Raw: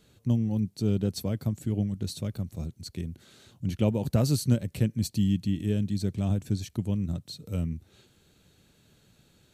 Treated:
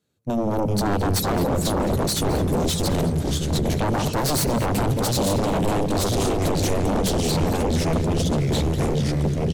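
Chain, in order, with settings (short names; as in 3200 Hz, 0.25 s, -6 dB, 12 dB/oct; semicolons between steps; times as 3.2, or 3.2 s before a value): AGC gain up to 10 dB; echoes that change speed 0.349 s, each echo -2 st, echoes 3; HPF 90 Hz 12 dB/oct; limiter -13.5 dBFS, peak gain reduction 10.5 dB; notches 60/120/180 Hz; dark delay 82 ms, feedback 79%, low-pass 2100 Hz, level -16 dB; sine folder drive 14 dB, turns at -9.5 dBFS; expander -5 dBFS; bell 2900 Hz -4 dB 1 oct; outdoor echo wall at 37 m, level -13 dB; gain +2.5 dB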